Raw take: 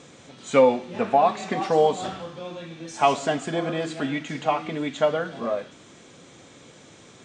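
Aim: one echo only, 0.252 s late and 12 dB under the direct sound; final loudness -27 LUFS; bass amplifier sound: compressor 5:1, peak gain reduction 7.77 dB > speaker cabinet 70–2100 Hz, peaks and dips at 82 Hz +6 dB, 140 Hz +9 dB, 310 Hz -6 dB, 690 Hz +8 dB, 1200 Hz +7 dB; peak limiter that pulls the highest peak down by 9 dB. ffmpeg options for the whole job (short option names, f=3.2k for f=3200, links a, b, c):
-af "alimiter=limit=-15dB:level=0:latency=1,aecho=1:1:252:0.251,acompressor=threshold=-27dB:ratio=5,highpass=f=70:w=0.5412,highpass=f=70:w=1.3066,equalizer=f=82:t=q:w=4:g=6,equalizer=f=140:t=q:w=4:g=9,equalizer=f=310:t=q:w=4:g=-6,equalizer=f=690:t=q:w=4:g=8,equalizer=f=1.2k:t=q:w=4:g=7,lowpass=f=2.1k:w=0.5412,lowpass=f=2.1k:w=1.3066,volume=2.5dB"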